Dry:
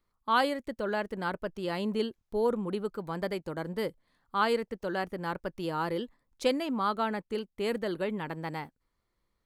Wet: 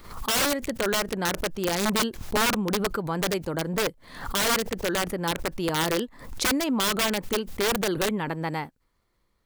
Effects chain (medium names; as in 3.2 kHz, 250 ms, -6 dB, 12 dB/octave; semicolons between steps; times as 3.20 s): integer overflow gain 24.5 dB; swell ahead of each attack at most 82 dB/s; trim +6.5 dB